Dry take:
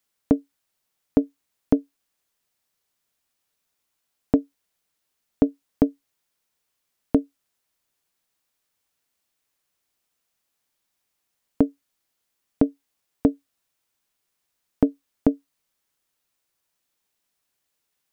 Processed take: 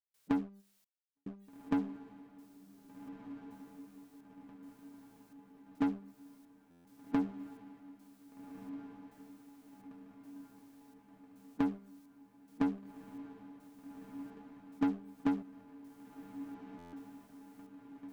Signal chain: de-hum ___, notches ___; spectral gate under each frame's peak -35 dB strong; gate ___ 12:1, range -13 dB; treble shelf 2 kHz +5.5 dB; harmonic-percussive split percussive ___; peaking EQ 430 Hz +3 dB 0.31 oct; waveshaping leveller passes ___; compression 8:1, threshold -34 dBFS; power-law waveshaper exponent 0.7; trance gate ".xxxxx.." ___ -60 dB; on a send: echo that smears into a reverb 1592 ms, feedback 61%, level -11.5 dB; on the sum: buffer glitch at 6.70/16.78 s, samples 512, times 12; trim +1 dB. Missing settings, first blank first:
198.2 Hz, 2, -50 dBFS, -14 dB, 3, 107 bpm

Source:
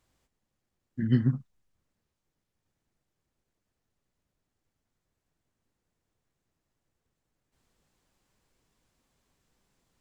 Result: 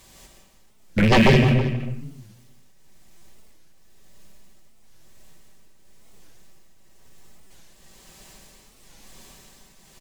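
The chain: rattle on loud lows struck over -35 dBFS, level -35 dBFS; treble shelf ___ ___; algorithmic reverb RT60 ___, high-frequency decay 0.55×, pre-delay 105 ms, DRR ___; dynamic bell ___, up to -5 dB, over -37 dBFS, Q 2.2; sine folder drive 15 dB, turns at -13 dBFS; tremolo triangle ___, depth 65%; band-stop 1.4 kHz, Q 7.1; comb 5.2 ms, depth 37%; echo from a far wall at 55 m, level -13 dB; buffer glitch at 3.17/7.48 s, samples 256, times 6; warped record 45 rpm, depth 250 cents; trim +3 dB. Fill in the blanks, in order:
2.5 kHz, +7.5 dB, 0.98 s, 1.5 dB, 230 Hz, 1 Hz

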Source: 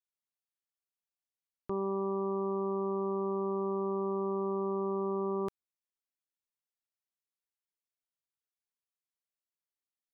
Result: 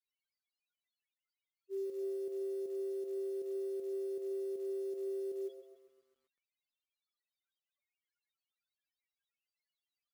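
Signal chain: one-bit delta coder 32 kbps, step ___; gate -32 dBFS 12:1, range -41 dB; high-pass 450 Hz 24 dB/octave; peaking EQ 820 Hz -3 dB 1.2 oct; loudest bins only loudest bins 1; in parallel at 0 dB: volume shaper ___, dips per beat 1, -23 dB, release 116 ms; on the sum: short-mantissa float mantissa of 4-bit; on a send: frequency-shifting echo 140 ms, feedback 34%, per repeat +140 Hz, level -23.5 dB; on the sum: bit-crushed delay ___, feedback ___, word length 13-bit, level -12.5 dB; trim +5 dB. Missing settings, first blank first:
-37.5 dBFS, 158 bpm, 132 ms, 55%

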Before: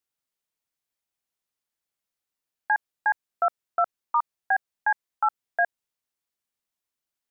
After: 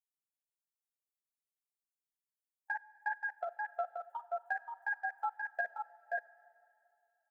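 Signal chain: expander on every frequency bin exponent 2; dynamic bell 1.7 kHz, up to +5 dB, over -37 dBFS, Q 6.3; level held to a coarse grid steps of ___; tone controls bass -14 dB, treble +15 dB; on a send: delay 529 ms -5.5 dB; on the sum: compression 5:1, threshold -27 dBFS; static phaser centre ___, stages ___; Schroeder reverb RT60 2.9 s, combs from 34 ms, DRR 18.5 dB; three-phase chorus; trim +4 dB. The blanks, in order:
23 dB, 310 Hz, 6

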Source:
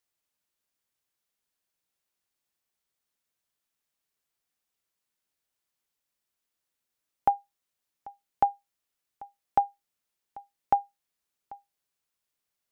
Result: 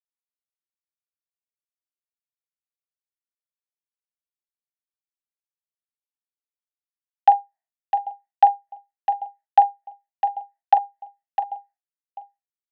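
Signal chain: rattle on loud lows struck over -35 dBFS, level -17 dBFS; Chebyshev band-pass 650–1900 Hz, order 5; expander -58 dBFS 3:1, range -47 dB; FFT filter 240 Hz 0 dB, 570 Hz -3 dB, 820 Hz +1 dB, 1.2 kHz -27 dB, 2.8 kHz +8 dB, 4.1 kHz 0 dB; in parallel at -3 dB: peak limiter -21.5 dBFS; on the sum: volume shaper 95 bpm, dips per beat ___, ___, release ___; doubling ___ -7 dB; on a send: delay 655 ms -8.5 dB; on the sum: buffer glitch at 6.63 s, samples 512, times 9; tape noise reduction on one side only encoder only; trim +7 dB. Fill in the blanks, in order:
1, -8 dB, 87 ms, 43 ms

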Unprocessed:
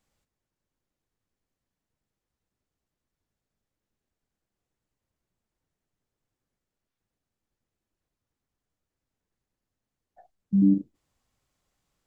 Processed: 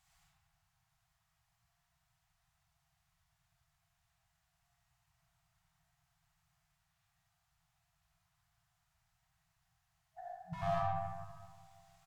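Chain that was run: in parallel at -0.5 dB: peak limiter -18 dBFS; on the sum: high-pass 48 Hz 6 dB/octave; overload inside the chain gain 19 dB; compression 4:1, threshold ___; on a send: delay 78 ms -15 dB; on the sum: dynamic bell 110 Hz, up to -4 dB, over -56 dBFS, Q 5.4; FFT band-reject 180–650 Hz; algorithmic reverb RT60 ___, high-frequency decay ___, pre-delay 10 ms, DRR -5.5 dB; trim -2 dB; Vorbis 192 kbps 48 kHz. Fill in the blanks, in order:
-26 dBFS, 1.8 s, 0.45×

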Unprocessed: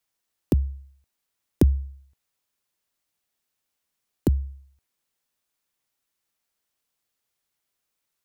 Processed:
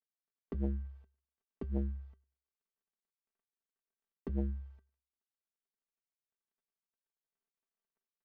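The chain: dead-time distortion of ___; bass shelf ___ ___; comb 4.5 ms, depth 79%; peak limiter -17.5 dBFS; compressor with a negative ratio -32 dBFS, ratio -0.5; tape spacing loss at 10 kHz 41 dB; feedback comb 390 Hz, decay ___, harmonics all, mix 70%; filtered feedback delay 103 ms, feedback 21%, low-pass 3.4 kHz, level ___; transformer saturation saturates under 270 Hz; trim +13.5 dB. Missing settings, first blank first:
0.2 ms, 92 Hz, -9 dB, 0.15 s, -24 dB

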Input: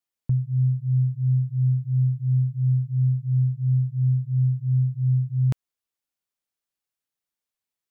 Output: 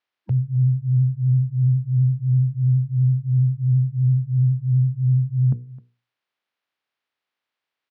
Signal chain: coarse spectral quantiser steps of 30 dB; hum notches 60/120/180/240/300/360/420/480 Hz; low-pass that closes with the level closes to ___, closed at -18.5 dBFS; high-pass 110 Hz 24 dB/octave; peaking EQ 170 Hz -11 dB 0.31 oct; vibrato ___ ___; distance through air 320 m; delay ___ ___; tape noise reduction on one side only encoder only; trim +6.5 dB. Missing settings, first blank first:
360 Hz, 12 Hz, 36 cents, 261 ms, -21 dB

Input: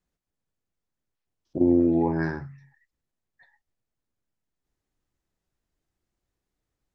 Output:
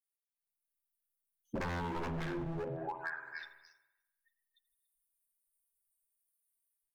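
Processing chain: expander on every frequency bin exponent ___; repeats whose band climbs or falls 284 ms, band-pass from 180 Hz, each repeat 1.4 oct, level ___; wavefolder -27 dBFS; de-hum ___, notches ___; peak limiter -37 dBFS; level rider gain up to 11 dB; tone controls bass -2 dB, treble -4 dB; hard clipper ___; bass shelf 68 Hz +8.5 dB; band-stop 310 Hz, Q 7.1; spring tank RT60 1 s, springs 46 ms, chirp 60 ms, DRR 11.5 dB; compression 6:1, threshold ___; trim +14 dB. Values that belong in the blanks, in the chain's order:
3, -9.5 dB, 62.94 Hz, 9, -35.5 dBFS, -51 dBFS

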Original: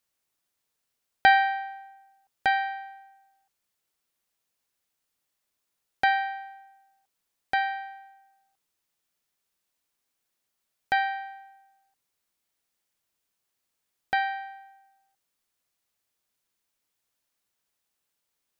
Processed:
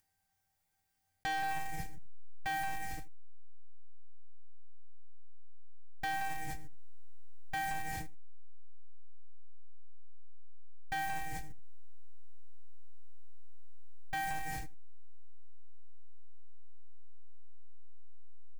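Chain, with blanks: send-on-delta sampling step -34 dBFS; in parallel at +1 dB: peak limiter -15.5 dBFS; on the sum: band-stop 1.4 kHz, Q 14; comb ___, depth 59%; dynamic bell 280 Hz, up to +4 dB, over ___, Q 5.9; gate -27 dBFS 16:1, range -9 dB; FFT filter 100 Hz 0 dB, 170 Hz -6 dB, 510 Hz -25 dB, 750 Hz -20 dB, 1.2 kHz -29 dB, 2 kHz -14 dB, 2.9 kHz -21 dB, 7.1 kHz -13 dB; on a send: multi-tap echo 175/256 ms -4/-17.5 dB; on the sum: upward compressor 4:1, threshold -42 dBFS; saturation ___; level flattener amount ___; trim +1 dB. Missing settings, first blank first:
6.3 ms, -49 dBFS, -33 dBFS, 70%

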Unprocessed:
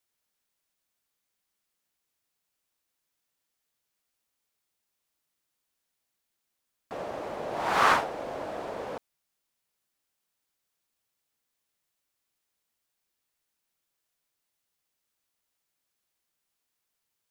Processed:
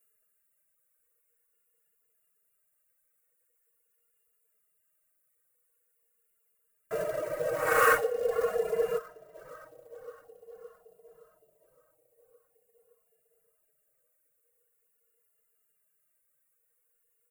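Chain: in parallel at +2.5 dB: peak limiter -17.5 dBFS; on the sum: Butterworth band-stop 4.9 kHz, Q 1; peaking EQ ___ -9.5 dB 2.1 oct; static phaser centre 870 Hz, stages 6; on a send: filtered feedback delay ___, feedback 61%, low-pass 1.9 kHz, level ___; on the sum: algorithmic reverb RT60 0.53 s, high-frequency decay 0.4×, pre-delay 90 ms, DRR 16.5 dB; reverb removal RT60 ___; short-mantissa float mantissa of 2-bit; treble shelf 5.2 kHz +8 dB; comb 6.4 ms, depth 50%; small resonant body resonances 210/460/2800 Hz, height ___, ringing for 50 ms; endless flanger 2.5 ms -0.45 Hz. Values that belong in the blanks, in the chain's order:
260 Hz, 566 ms, -14.5 dB, 1.3 s, 16 dB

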